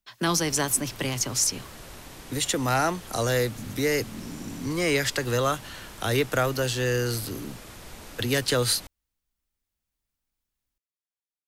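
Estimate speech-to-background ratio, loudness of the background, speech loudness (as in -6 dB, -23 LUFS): 17.5 dB, -43.5 LUFS, -26.0 LUFS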